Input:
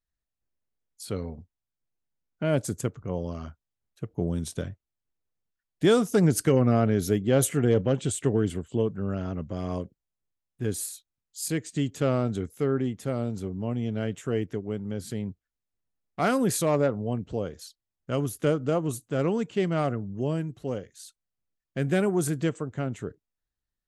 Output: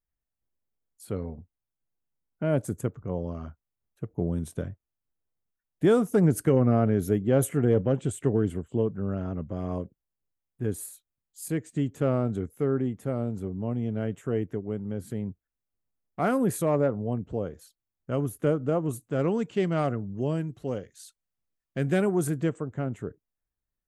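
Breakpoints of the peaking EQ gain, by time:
peaking EQ 4.7 kHz 1.8 oct
18.69 s -14 dB
19.50 s -3 dB
21.94 s -3 dB
22.61 s -12.5 dB

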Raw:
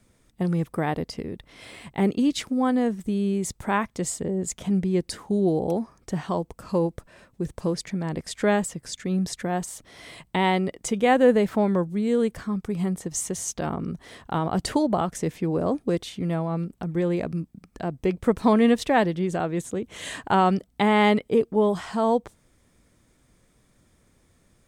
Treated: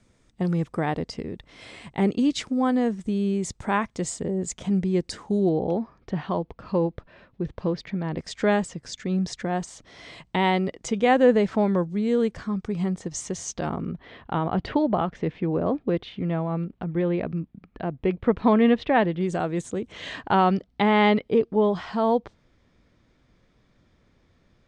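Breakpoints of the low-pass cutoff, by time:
low-pass 24 dB/octave
7.9 kHz
from 5.49 s 4.1 kHz
from 8.18 s 6.7 kHz
from 13.81 s 3.5 kHz
from 19.21 s 8.2 kHz
from 19.92 s 5 kHz

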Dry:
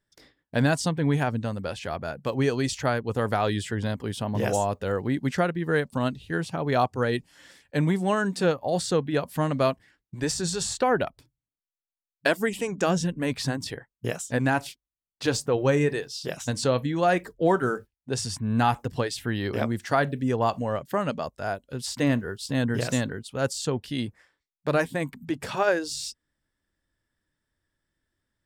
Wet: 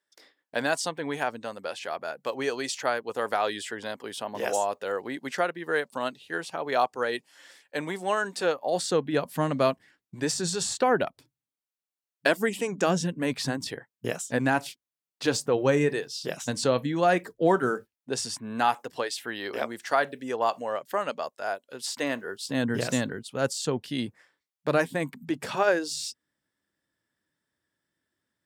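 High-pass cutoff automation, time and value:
8.44 s 450 Hz
9.20 s 160 Hz
17.74 s 160 Hz
18.79 s 450 Hz
22.16 s 450 Hz
22.70 s 150 Hz

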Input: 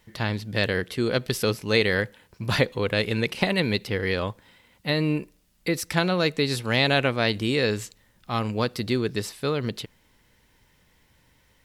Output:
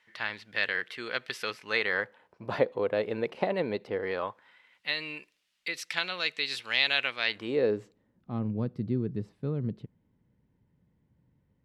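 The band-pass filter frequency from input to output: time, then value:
band-pass filter, Q 1.2
1.58 s 1.9 kHz
2.46 s 610 Hz
3.93 s 610 Hz
4.95 s 2.8 kHz
7.24 s 2.8 kHz
7.56 s 520 Hz
8.52 s 160 Hz

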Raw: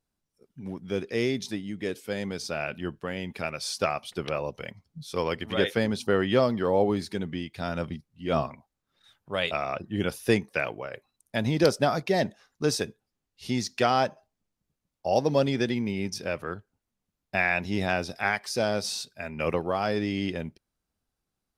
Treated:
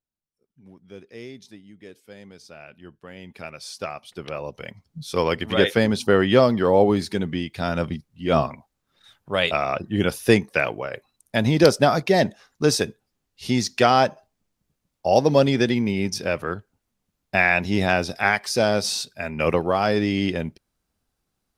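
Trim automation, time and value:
2.78 s -12 dB
3.41 s -4.5 dB
4.04 s -4.5 dB
5.11 s +6.5 dB

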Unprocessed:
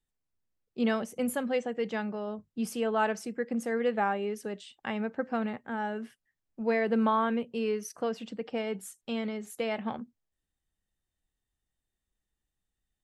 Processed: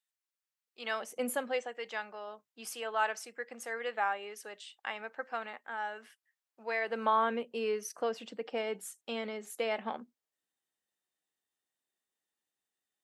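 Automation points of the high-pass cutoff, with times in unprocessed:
0.80 s 1.2 kHz
1.27 s 340 Hz
1.75 s 830 Hz
6.79 s 830 Hz
7.23 s 370 Hz

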